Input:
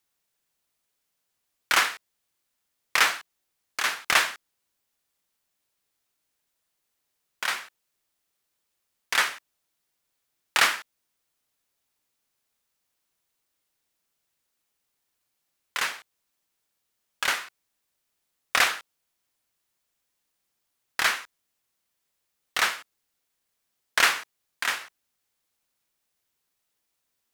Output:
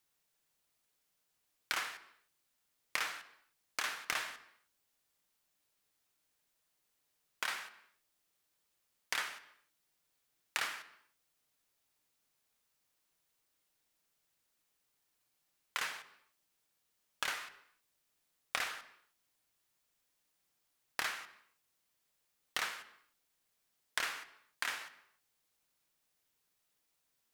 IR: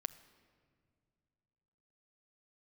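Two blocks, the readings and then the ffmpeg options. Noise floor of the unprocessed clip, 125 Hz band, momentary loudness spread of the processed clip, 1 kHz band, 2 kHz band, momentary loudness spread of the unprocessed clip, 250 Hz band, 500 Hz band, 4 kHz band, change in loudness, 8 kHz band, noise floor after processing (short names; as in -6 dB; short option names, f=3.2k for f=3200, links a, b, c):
-79 dBFS, n/a, 14 LU, -14.0 dB, -14.0 dB, 15 LU, -13.0 dB, -14.0 dB, -13.5 dB, -14.0 dB, -13.5 dB, -81 dBFS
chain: -filter_complex "[0:a]acompressor=threshold=-32dB:ratio=8[a];[1:a]atrim=start_sample=2205,afade=t=out:st=0.37:d=0.01,atrim=end_sample=16758[b];[a][b]afir=irnorm=-1:irlink=0"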